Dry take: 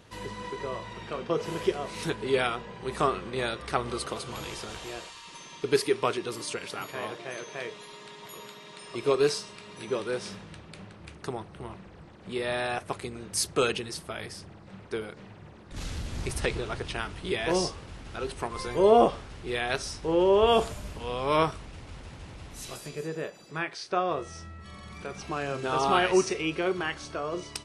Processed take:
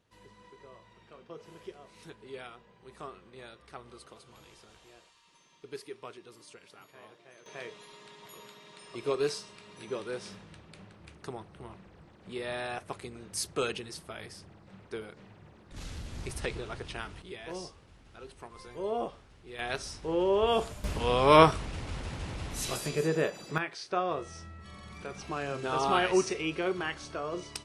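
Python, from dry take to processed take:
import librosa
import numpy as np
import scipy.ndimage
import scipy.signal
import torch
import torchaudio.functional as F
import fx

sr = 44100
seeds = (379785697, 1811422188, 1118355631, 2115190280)

y = fx.gain(x, sr, db=fx.steps((0.0, -18.0), (7.46, -6.0), (17.22, -14.0), (19.59, -5.0), (20.84, 6.0), (23.58, -3.0)))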